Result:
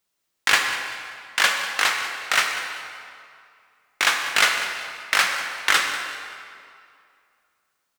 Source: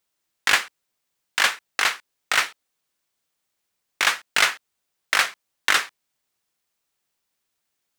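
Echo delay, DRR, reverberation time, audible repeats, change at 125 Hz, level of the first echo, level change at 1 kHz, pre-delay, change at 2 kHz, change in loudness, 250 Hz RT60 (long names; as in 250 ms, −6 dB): 193 ms, 2.5 dB, 2.4 s, 1, can't be measured, −14.5 dB, +2.0 dB, 9 ms, +1.5 dB, +0.5 dB, 2.3 s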